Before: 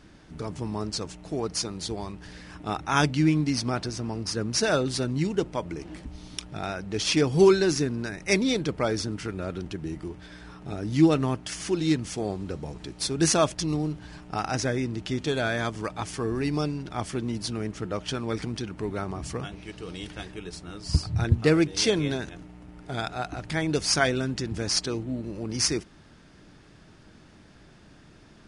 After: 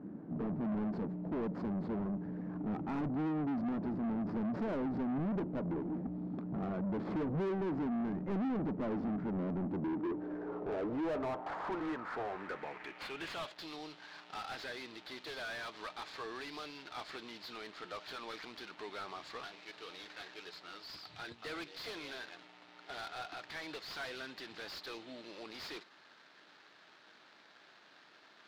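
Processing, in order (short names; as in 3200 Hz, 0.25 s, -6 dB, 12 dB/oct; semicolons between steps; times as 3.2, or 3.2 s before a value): median filter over 15 samples; compressor 2:1, threshold -28 dBFS, peak gain reduction 8.5 dB; band-pass sweep 210 Hz -> 4000 Hz, 9.62–13.61; overdrive pedal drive 35 dB, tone 1100 Hz, clips at -22 dBFS; gain -6 dB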